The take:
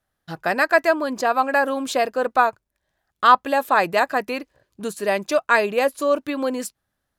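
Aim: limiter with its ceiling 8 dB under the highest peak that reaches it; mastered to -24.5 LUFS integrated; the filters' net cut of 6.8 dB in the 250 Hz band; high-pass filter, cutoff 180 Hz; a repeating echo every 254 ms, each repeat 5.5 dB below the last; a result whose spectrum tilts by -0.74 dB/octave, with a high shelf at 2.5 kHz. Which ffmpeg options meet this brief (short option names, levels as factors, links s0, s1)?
-af "highpass=180,equalizer=f=250:t=o:g=-7,highshelf=f=2500:g=-4.5,alimiter=limit=0.266:level=0:latency=1,aecho=1:1:254|508|762|1016|1270|1524|1778:0.531|0.281|0.149|0.079|0.0419|0.0222|0.0118,volume=0.891"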